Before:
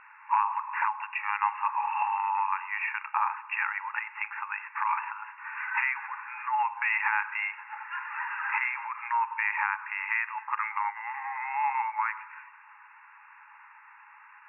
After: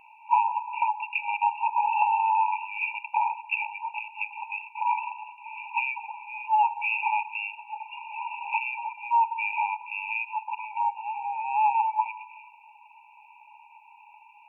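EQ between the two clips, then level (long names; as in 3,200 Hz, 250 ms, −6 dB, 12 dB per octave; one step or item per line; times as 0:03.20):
linear-phase brick-wall band-stop 990–2,300 Hz
+6.0 dB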